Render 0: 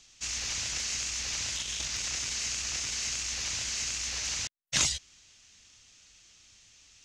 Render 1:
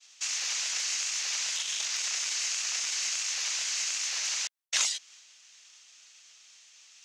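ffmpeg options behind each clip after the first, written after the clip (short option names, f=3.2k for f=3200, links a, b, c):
-af "agate=range=-33dB:threshold=-54dB:ratio=3:detection=peak,highpass=760,acompressor=threshold=-41dB:ratio=1.5,volume=6dB"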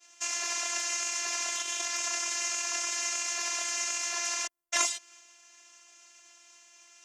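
-af "equalizer=f=125:t=o:w=1:g=11,equalizer=f=250:t=o:w=1:g=5,equalizer=f=500:t=o:w=1:g=10,equalizer=f=1k:t=o:w=1:g=5,equalizer=f=4k:t=o:w=1:g=-9,afftfilt=real='hypot(re,im)*cos(PI*b)':imag='0':win_size=512:overlap=0.75,volume=6dB"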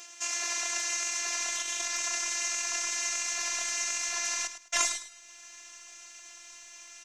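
-af "aecho=1:1:105|210|315:0.282|0.0676|0.0162,asubboost=boost=6.5:cutoff=120,acompressor=mode=upward:threshold=-37dB:ratio=2.5"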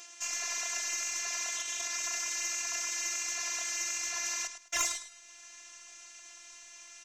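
-af "aeval=exprs='0.501*(cos(1*acos(clip(val(0)/0.501,-1,1)))-cos(1*PI/2))+0.126*(cos(4*acos(clip(val(0)/0.501,-1,1)))-cos(4*PI/2))+0.0794*(cos(6*acos(clip(val(0)/0.501,-1,1)))-cos(6*PI/2))+0.0316*(cos(8*acos(clip(val(0)/0.501,-1,1)))-cos(8*PI/2))':c=same,volume=-2dB"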